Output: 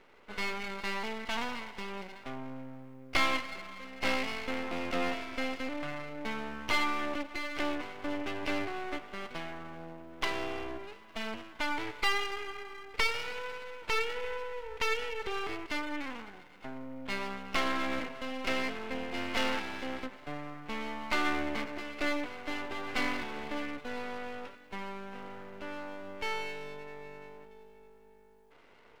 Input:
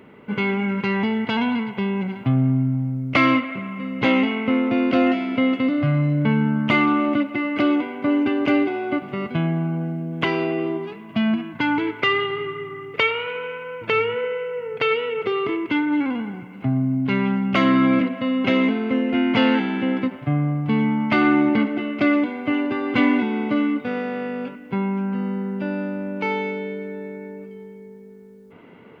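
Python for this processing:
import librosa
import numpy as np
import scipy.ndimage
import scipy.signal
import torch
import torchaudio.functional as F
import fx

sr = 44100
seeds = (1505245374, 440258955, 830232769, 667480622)

y = scipy.signal.sosfilt(scipy.signal.butter(2, 510.0, 'highpass', fs=sr, output='sos'), x)
y = np.maximum(y, 0.0)
y = F.gain(torch.from_numpy(y), -4.5).numpy()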